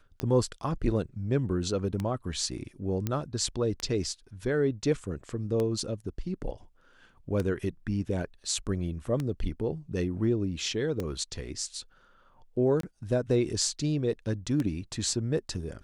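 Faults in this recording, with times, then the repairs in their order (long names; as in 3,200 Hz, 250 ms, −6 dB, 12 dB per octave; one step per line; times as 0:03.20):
scratch tick 33 1/3 rpm −18 dBFS
0:03.07: click −16 dBFS
0:12.81–0:12.83: drop-out 23 ms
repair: click removal
repair the gap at 0:12.81, 23 ms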